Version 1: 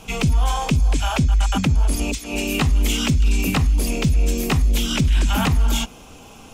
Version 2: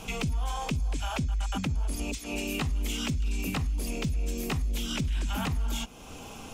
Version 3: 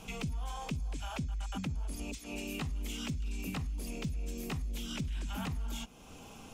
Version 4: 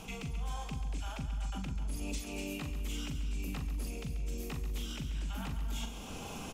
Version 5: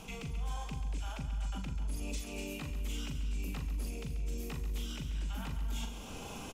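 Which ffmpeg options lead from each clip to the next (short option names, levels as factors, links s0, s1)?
-af "acompressor=threshold=0.0141:ratio=2"
-af "equalizer=f=180:t=o:w=0.85:g=3,volume=0.398"
-filter_complex "[0:a]areverse,acompressor=threshold=0.00631:ratio=12,areverse,asplit=2[s0][s1];[s1]adelay=41,volume=0.422[s2];[s0][s2]amix=inputs=2:normalize=0,aecho=1:1:137|256.6:0.282|0.251,volume=2.24"
-filter_complex "[0:a]asplit=2[s0][s1];[s1]adelay=39,volume=0.282[s2];[s0][s2]amix=inputs=2:normalize=0,volume=0.841"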